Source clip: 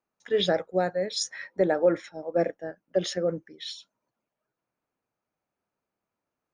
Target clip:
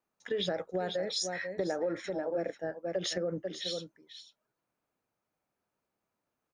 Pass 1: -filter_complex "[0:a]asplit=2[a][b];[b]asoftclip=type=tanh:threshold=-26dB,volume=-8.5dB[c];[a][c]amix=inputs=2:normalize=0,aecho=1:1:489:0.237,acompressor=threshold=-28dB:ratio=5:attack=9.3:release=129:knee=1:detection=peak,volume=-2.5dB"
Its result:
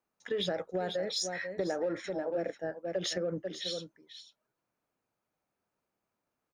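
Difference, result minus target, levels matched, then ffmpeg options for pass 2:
soft clip: distortion +13 dB
-filter_complex "[0:a]asplit=2[a][b];[b]asoftclip=type=tanh:threshold=-14dB,volume=-8.5dB[c];[a][c]amix=inputs=2:normalize=0,aecho=1:1:489:0.237,acompressor=threshold=-28dB:ratio=5:attack=9.3:release=129:knee=1:detection=peak,volume=-2.5dB"

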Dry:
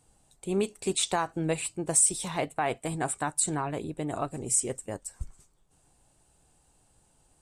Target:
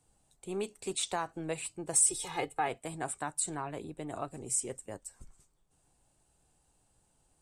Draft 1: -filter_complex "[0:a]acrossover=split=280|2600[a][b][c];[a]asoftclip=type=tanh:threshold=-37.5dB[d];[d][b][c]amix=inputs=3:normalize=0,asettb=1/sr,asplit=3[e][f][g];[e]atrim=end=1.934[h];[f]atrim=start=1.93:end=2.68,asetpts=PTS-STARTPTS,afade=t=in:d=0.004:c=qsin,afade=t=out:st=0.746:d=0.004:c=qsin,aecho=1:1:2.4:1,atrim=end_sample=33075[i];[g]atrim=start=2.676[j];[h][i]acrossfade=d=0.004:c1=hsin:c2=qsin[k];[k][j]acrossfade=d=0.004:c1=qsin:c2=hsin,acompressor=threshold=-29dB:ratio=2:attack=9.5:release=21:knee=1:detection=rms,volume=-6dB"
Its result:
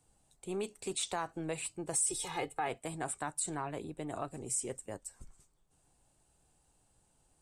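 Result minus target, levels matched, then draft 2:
compressor: peak gain reduction +7 dB
-filter_complex "[0:a]acrossover=split=280|2600[a][b][c];[a]asoftclip=type=tanh:threshold=-37.5dB[d];[d][b][c]amix=inputs=3:normalize=0,asettb=1/sr,asplit=3[e][f][g];[e]atrim=end=1.934[h];[f]atrim=start=1.93:end=2.68,asetpts=PTS-STARTPTS,afade=t=in:d=0.004:c=qsin,afade=t=out:st=0.746:d=0.004:c=qsin,aecho=1:1:2.4:1,atrim=end_sample=33075[i];[g]atrim=start=2.676[j];[h][i]acrossfade=d=0.004:c1=hsin:c2=qsin[k];[k][j]acrossfade=d=0.004:c1=qsin:c2=hsin,volume=-6dB"

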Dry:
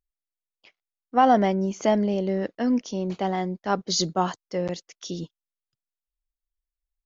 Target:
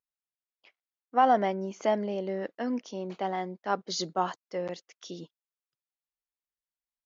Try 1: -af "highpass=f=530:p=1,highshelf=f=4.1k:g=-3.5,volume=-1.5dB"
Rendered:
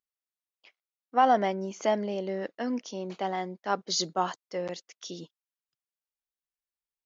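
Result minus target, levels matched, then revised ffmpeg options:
8000 Hz band +5.0 dB
-af "highpass=f=530:p=1,highshelf=f=4.1k:g=-11.5,volume=-1.5dB"

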